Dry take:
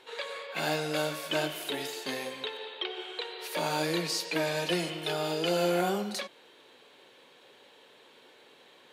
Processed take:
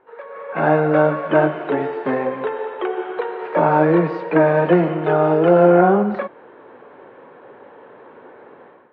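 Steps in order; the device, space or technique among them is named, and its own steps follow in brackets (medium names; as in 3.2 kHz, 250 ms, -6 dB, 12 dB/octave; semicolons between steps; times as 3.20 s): action camera in a waterproof case (low-pass 1.5 kHz 24 dB/octave; level rider gain up to 15 dB; trim +2 dB; AAC 48 kbps 32 kHz)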